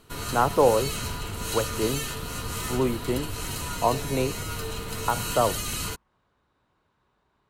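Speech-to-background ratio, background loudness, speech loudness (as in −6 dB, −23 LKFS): 4.5 dB, −31.5 LKFS, −27.0 LKFS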